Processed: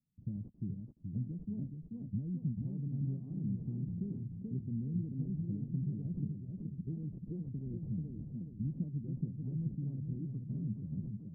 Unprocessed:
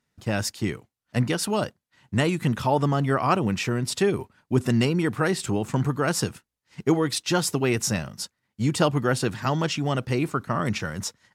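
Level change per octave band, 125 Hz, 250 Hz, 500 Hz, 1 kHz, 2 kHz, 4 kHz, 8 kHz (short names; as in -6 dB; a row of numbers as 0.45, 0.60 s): -10.0 dB, -13.0 dB, -30.5 dB, under -40 dB, under -40 dB, under -40 dB, under -40 dB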